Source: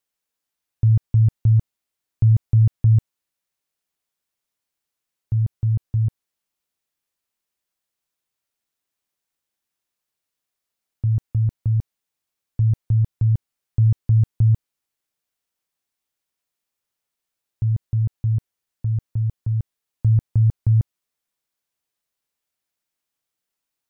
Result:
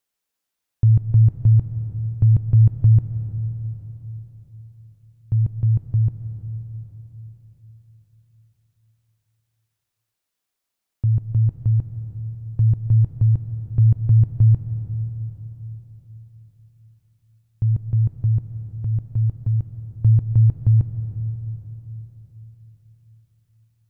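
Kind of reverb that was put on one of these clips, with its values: digital reverb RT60 4.2 s, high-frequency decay 0.7×, pre-delay 95 ms, DRR 8 dB; gain +1.5 dB

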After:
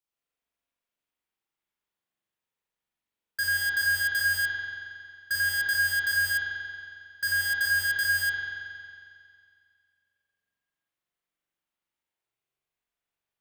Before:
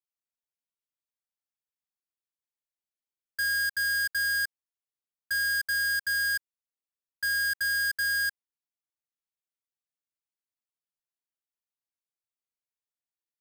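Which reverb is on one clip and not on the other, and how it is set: spring tank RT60 2.2 s, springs 43 ms, chirp 75 ms, DRR -8 dB; gain +1 dB

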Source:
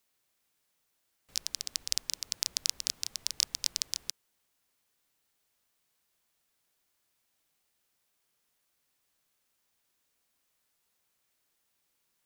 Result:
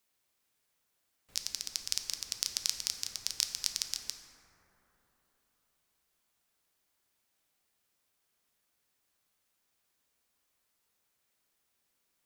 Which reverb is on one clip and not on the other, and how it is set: plate-style reverb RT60 4 s, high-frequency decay 0.25×, DRR 4.5 dB; gain -2 dB

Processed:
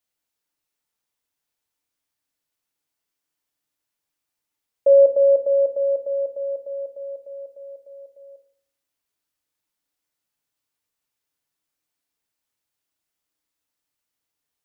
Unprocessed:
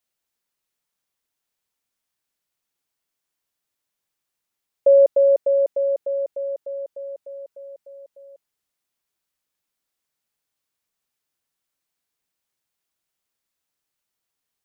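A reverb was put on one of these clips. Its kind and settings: FDN reverb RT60 0.6 s, low-frequency decay 1.35×, high-frequency decay 0.85×, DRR 5 dB; gain -2 dB

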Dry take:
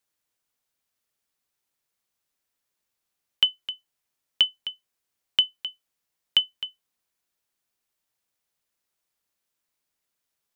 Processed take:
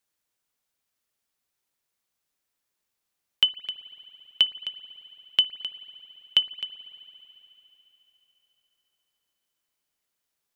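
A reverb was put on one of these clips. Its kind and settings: spring tank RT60 3.7 s, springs 55 ms, chirp 70 ms, DRR 15 dB

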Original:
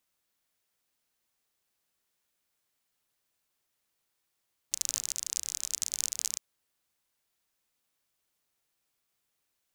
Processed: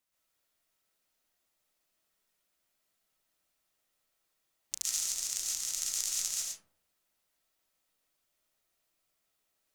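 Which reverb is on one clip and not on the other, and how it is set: digital reverb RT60 0.59 s, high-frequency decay 0.35×, pre-delay 95 ms, DRR -5.5 dB; gain -5 dB

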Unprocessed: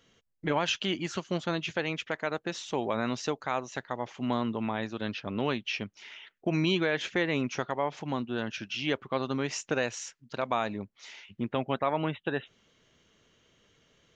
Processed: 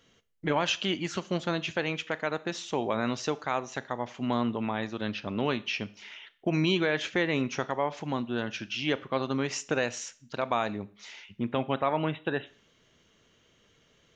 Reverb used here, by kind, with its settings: Schroeder reverb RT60 0.45 s, combs from 26 ms, DRR 16.5 dB; gain +1 dB

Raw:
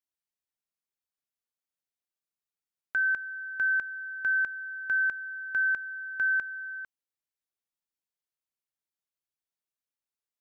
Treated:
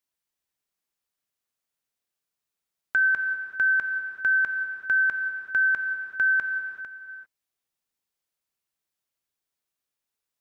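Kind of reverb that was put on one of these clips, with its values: non-linear reverb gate 0.42 s flat, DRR 6 dB; gain +6 dB

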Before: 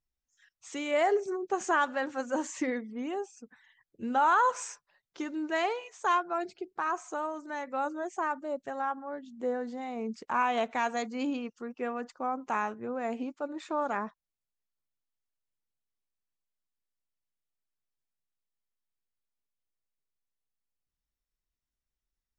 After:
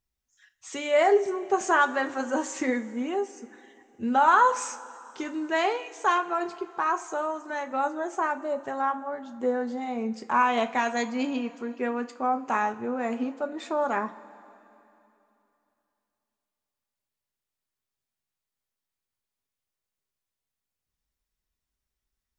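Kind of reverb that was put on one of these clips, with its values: two-slope reverb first 0.24 s, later 3 s, from -20 dB, DRR 6 dB; gain +4 dB

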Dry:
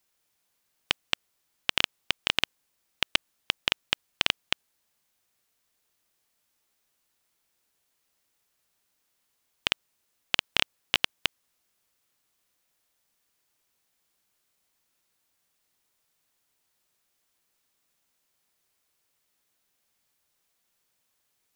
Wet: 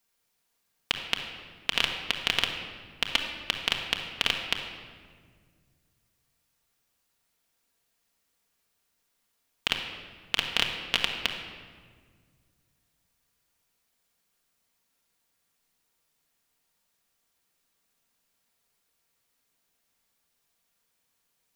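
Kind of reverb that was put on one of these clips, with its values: shoebox room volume 2500 m³, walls mixed, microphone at 1.7 m; gain -2 dB

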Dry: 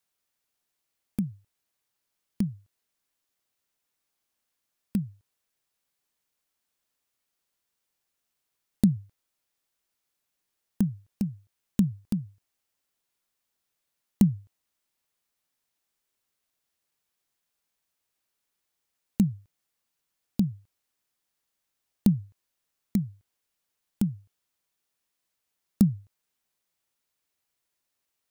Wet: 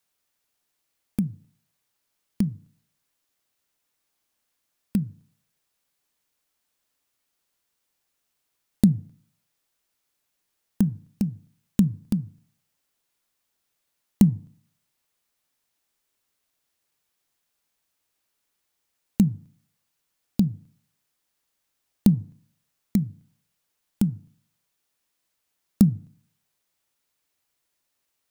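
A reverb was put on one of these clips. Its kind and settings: FDN reverb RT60 0.53 s, low-frequency decay 1.1×, high-frequency decay 0.35×, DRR 18.5 dB; gain +4 dB

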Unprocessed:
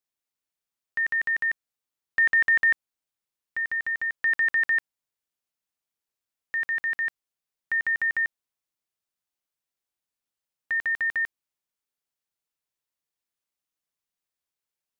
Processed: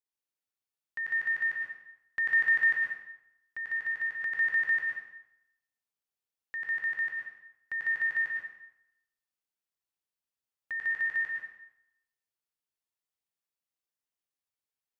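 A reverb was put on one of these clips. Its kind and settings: plate-style reverb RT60 0.84 s, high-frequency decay 0.85×, pre-delay 95 ms, DRR -1 dB; gain -9 dB

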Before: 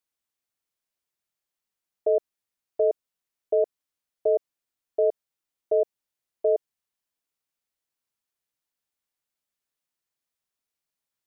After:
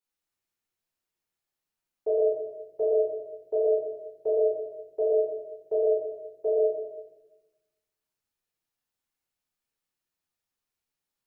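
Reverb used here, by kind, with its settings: shoebox room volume 470 m³, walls mixed, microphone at 4.2 m; gain -9.5 dB

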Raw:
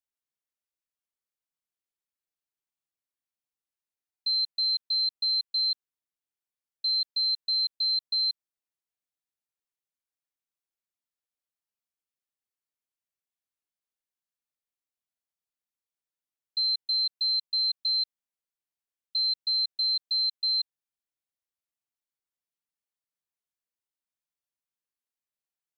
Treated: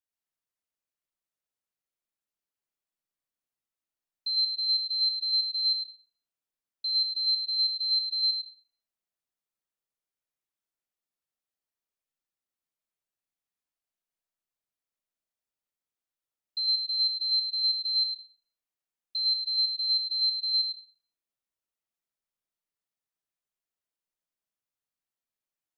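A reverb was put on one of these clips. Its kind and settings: digital reverb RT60 1.8 s, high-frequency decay 0.25×, pre-delay 50 ms, DRR -1.5 dB; gain -3.5 dB

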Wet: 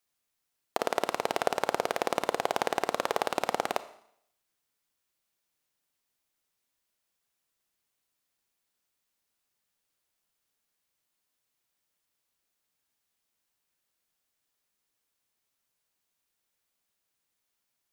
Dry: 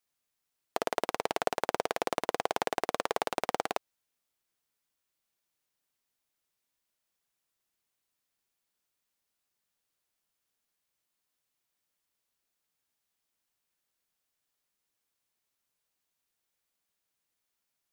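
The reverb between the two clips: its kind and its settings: Schroeder reverb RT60 0.69 s, combs from 28 ms, DRR 13 dB; gain +2 dB

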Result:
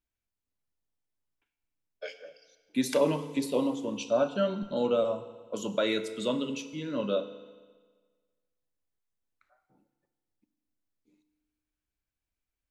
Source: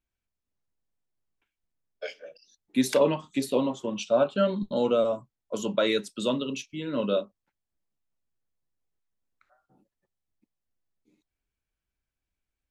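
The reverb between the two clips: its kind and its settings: FDN reverb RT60 1.5 s, low-frequency decay 0.95×, high-frequency decay 0.95×, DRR 10 dB; gain -3.5 dB

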